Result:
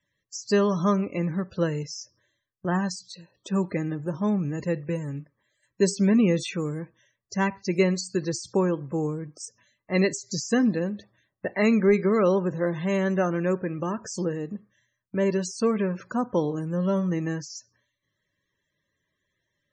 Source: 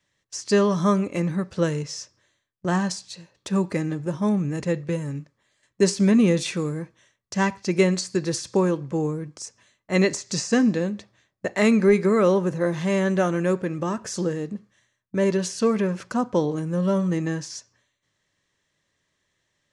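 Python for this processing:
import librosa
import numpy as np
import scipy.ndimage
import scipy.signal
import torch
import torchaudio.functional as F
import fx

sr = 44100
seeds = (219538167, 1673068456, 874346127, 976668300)

y = fx.spec_topn(x, sr, count=64)
y = fx.peak_eq(y, sr, hz=8400.0, db=9.0, octaves=0.23)
y = F.gain(torch.from_numpy(y), -2.5).numpy()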